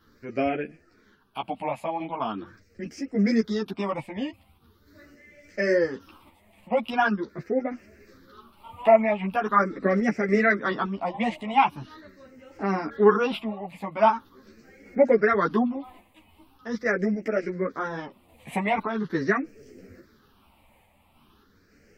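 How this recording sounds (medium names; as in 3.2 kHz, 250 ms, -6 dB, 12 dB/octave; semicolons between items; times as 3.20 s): phasing stages 6, 0.42 Hz, lowest notch 390–1000 Hz; random-step tremolo; a shimmering, thickened sound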